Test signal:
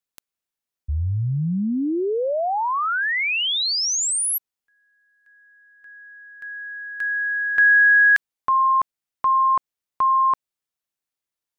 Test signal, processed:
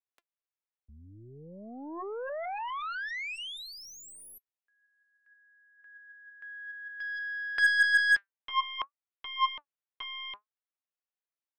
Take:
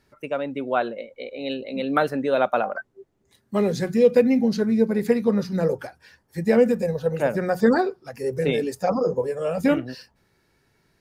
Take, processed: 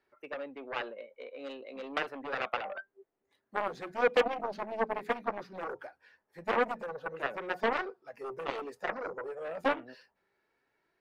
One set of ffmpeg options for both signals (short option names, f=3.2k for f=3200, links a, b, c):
-filter_complex "[0:a]flanger=delay=2.6:depth=2.5:regen=76:speed=0.54:shape=sinusoidal,aeval=exprs='0.335*(cos(1*acos(clip(val(0)/0.335,-1,1)))-cos(1*PI/2))+0.0335*(cos(5*acos(clip(val(0)/0.335,-1,1)))-cos(5*PI/2))+0.0531*(cos(6*acos(clip(val(0)/0.335,-1,1)))-cos(6*PI/2))+0.133*(cos(7*acos(clip(val(0)/0.335,-1,1)))-cos(7*PI/2))+0.0188*(cos(8*acos(clip(val(0)/0.335,-1,1)))-cos(8*PI/2))':c=same,acrossover=split=330 3200:gain=0.141 1 0.178[a][b][c];[a][b][c]amix=inputs=3:normalize=0,volume=-6dB"